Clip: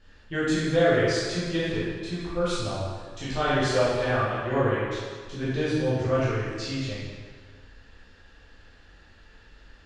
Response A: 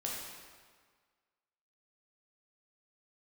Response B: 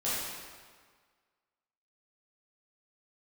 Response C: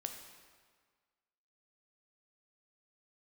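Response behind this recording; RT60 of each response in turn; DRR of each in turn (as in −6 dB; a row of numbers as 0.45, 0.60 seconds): B; 1.7, 1.7, 1.7 seconds; −4.0, −11.0, 4.0 decibels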